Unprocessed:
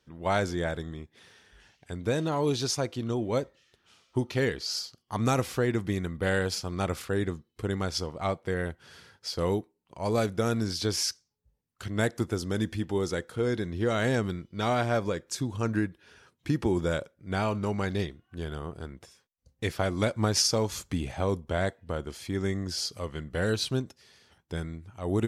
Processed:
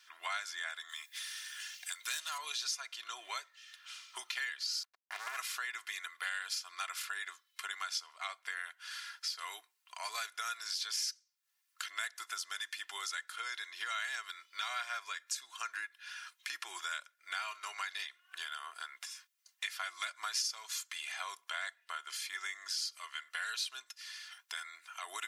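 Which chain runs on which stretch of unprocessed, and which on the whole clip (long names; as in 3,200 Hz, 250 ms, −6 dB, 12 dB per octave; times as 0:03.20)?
0:00.89–0:02.38: phase distortion by the signal itself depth 0.054 ms + RIAA equalisation recording
0:04.83–0:05.37: drawn EQ curve 130 Hz 0 dB, 180 Hz −7 dB, 540 Hz −7 dB, 1,200 Hz −26 dB + leveller curve on the samples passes 5 + windowed peak hold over 17 samples
whole clip: high-pass filter 1,300 Hz 24 dB per octave; comb filter 2.9 ms, depth 58%; downward compressor 3 to 1, threshold −53 dBFS; level +11.5 dB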